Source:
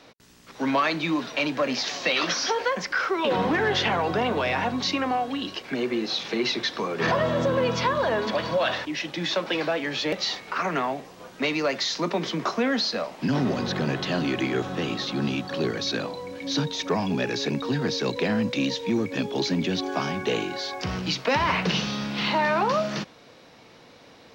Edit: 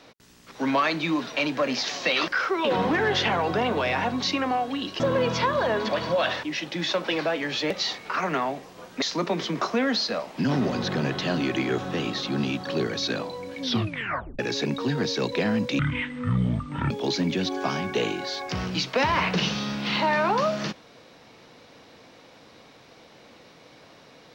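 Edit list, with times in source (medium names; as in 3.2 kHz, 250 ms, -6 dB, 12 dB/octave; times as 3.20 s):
2.28–2.88 s: delete
5.60–7.42 s: delete
11.44–11.86 s: delete
16.46 s: tape stop 0.77 s
18.63–19.22 s: speed 53%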